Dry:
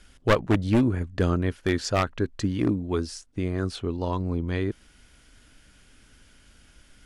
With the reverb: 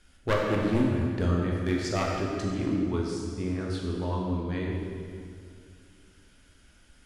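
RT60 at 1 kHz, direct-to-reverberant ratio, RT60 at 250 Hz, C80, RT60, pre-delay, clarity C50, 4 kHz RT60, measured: 2.2 s, -2.5 dB, 2.7 s, 1.5 dB, 2.3 s, 10 ms, 0.0 dB, 1.8 s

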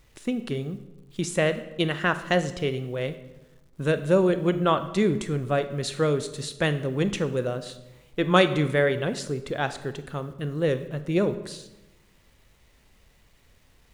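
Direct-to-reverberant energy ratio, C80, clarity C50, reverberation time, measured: 11.0 dB, 15.0 dB, 13.0 dB, 1.0 s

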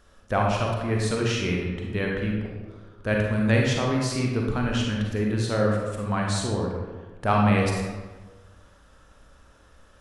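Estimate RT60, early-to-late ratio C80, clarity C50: 1.4 s, 3.5 dB, 0.5 dB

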